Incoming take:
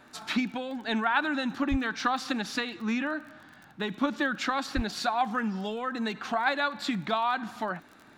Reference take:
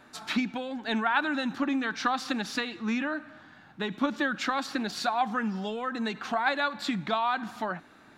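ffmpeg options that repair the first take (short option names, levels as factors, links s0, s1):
-filter_complex "[0:a]adeclick=t=4,asplit=3[s0][s1][s2];[s0]afade=t=out:st=1.7:d=0.02[s3];[s1]highpass=f=140:w=0.5412,highpass=f=140:w=1.3066,afade=t=in:st=1.7:d=0.02,afade=t=out:st=1.82:d=0.02[s4];[s2]afade=t=in:st=1.82:d=0.02[s5];[s3][s4][s5]amix=inputs=3:normalize=0,asplit=3[s6][s7][s8];[s6]afade=t=out:st=4.75:d=0.02[s9];[s7]highpass=f=140:w=0.5412,highpass=f=140:w=1.3066,afade=t=in:st=4.75:d=0.02,afade=t=out:st=4.87:d=0.02[s10];[s8]afade=t=in:st=4.87:d=0.02[s11];[s9][s10][s11]amix=inputs=3:normalize=0"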